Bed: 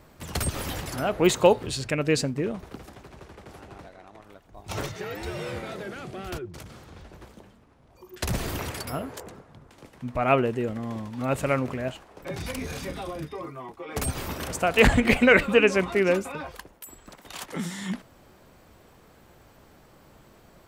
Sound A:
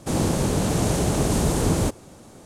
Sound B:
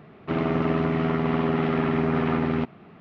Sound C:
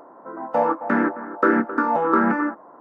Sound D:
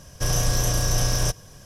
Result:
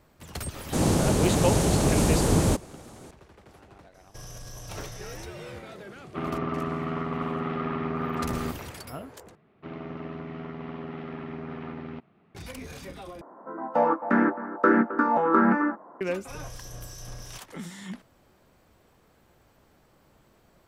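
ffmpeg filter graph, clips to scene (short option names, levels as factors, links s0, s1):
-filter_complex "[4:a]asplit=2[s0][s1];[2:a]asplit=2[s2][s3];[0:a]volume=0.447[s4];[s0]alimiter=limit=0.1:level=0:latency=1:release=14[s5];[s2]equalizer=f=1200:t=o:w=0.27:g=9.5[s6];[3:a]equalizer=f=200:w=3.5:g=4[s7];[s1]acrossover=split=2100[s8][s9];[s8]aeval=exprs='val(0)*(1-0.5/2+0.5/2*cos(2*PI*2.8*n/s))':c=same[s10];[s9]aeval=exprs='val(0)*(1-0.5/2-0.5/2*cos(2*PI*2.8*n/s))':c=same[s11];[s10][s11]amix=inputs=2:normalize=0[s12];[s4]asplit=3[s13][s14][s15];[s13]atrim=end=9.354[s16];[s3]atrim=end=3,asetpts=PTS-STARTPTS,volume=0.2[s17];[s14]atrim=start=12.346:end=13.214[s18];[s7]atrim=end=2.8,asetpts=PTS-STARTPTS,volume=0.75[s19];[s15]atrim=start=16.006[s20];[1:a]atrim=end=2.45,asetpts=PTS-STARTPTS,volume=0.944,afade=t=in:d=0.004:c=hsin,afade=t=out:st=2.446:d=0.004:c=hsin,adelay=660[s21];[s5]atrim=end=1.65,asetpts=PTS-STARTPTS,volume=0.2,afade=t=in:d=0.004:c=hsin,afade=t=out:st=1.646:d=0.004:c=hsin,adelay=3940[s22];[s6]atrim=end=3,asetpts=PTS-STARTPTS,volume=0.422,afade=t=in:d=0.004:c=hsin,afade=t=out:st=2.996:d=0.004:c=hsin,adelay=5870[s23];[s12]atrim=end=1.65,asetpts=PTS-STARTPTS,volume=0.141,afade=t=in:d=0.004:c=hsin,afade=t=out:st=1.646:d=0.004:c=hsin,adelay=16070[s24];[s16][s17]acrossfade=d=0.004:c1=hsin:c2=hsin[s25];[s25][s18]acrossfade=d=0.004:c1=hsin:c2=hsin[s26];[s26][s19]acrossfade=d=0.004:c1=hsin:c2=hsin[s27];[s27][s20]acrossfade=d=0.004:c1=hsin:c2=hsin[s28];[s28][s21][s22][s23][s24]amix=inputs=5:normalize=0"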